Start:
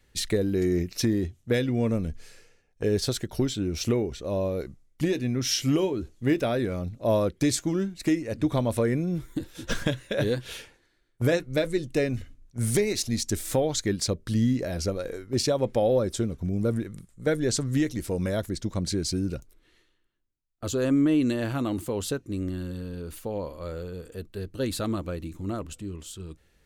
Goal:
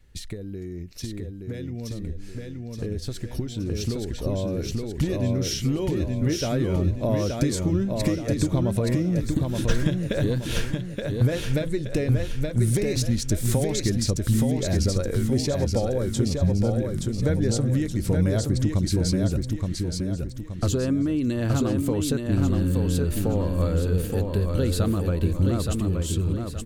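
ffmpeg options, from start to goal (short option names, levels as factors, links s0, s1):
-filter_complex "[0:a]acompressor=threshold=0.0158:ratio=6,lowshelf=f=180:g=11.5,asplit=2[s0][s1];[s1]aecho=0:1:873|1746|2619|3492|4365:0.631|0.265|0.111|0.0467|0.0196[s2];[s0][s2]amix=inputs=2:normalize=0,dynaudnorm=f=390:g=21:m=3.55,volume=0.841"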